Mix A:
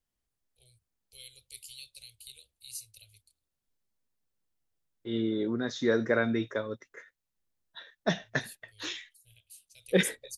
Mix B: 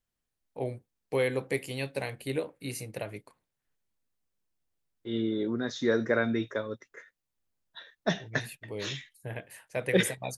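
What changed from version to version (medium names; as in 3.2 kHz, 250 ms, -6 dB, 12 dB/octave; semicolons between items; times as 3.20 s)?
first voice: remove inverse Chebyshev band-stop 140–1900 Hz, stop band 40 dB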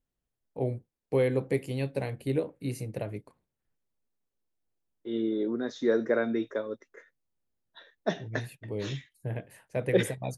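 second voice: add high-pass 310 Hz 12 dB/octave; master: add tilt shelf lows +6.5 dB, about 700 Hz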